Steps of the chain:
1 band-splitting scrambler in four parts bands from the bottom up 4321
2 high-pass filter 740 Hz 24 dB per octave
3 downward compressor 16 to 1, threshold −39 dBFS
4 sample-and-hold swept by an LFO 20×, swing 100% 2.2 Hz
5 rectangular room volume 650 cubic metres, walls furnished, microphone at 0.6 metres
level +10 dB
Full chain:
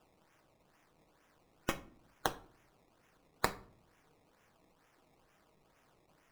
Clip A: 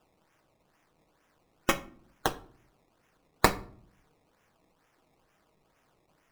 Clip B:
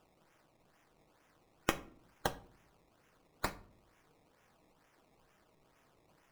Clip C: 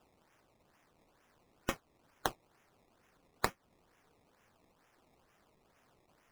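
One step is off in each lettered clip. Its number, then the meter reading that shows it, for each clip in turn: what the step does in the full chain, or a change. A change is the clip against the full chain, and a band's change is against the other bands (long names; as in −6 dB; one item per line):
3, average gain reduction 9.0 dB
2, 250 Hz band +2.0 dB
5, echo-to-direct ratio −11.0 dB to none audible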